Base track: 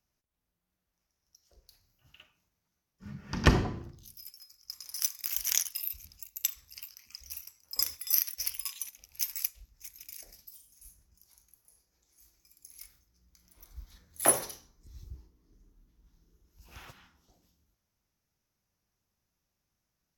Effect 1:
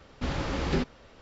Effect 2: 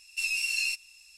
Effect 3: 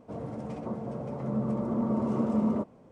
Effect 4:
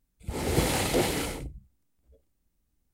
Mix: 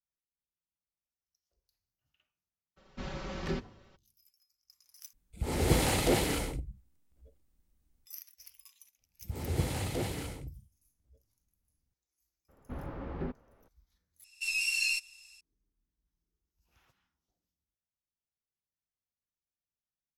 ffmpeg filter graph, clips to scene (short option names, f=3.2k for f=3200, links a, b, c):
-filter_complex "[1:a]asplit=2[a][b];[4:a]asplit=2[c][d];[0:a]volume=-20dB[e];[a]aecho=1:1:5.3:0.91[f];[c]lowshelf=f=78:g=6[g];[d]equalizer=f=95:w=1:g=11.5[h];[b]lowpass=1.3k[i];[2:a]dynaudnorm=f=160:g=3:m=6dB[j];[e]asplit=3[k][l][m];[k]atrim=end=5.134[n];[g]atrim=end=2.93,asetpts=PTS-STARTPTS,volume=-2dB[o];[l]atrim=start=8.056:end=14.244[p];[j]atrim=end=1.17,asetpts=PTS-STARTPTS,volume=-7dB[q];[m]atrim=start=15.406[r];[f]atrim=end=1.21,asetpts=PTS-STARTPTS,volume=-11dB,afade=t=in:d=0.02,afade=t=out:st=1.19:d=0.02,adelay=2760[s];[h]atrim=end=2.93,asetpts=PTS-STARTPTS,volume=-11dB,afade=t=in:d=0.004:c=hsin,afade=t=out:st=2.926:d=0.004:c=hsin,adelay=9010[t];[i]atrim=end=1.21,asetpts=PTS-STARTPTS,volume=-9.5dB,afade=t=in:d=0.02,afade=t=out:st=1.19:d=0.02,adelay=12480[u];[n][o]acrossfade=d=0.004:c1=hsin:c2=hsin[v];[v][p]acrossfade=d=0.004:c1=hsin:c2=hsin[w];[w][q]acrossfade=d=0.004:c1=hsin:c2=hsin[x];[x][r]acrossfade=d=0.004:c1=hsin:c2=hsin[y];[y][s][t][u]amix=inputs=4:normalize=0"